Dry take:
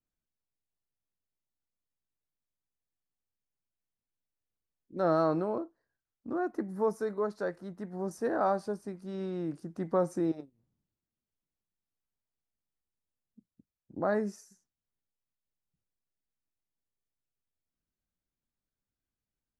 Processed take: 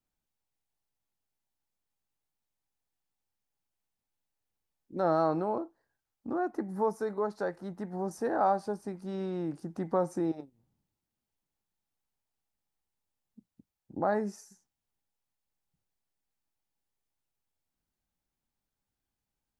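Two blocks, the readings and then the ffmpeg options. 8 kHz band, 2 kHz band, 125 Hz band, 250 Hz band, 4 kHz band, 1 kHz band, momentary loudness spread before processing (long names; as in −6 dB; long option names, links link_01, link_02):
+1.0 dB, −0.5 dB, 0.0 dB, 0.0 dB, can't be measured, +3.0 dB, 12 LU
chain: -filter_complex "[0:a]asplit=2[link_01][link_02];[link_02]acompressor=threshold=-37dB:ratio=6,volume=1dB[link_03];[link_01][link_03]amix=inputs=2:normalize=0,equalizer=frequency=830:width_type=o:width=0.3:gain=8.5,volume=-3.5dB"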